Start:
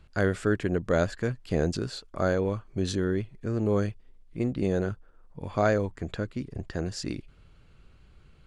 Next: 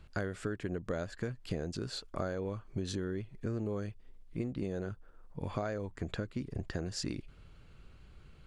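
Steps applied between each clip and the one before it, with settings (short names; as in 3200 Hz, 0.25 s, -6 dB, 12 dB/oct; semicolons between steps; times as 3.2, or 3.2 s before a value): compressor 12:1, threshold -32 dBFS, peak gain reduction 14.5 dB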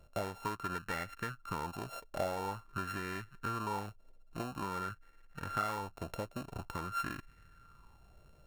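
sample sorter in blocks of 32 samples; LFO bell 0.48 Hz 590–1900 Hz +15 dB; gain -6 dB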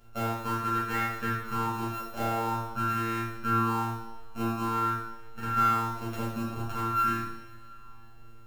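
robotiser 114 Hz; two-slope reverb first 0.77 s, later 3.3 s, from -20 dB, DRR -9.5 dB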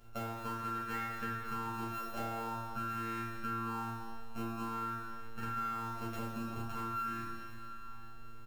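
compressor 5:1, threshold -36 dBFS, peak gain reduction 13.5 dB; on a send: feedback echo 0.215 s, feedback 59%, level -15 dB; on the sum: gain -1.5 dB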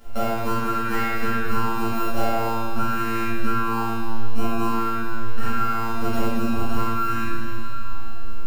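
shoebox room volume 190 m³, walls mixed, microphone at 2.1 m; gain +8.5 dB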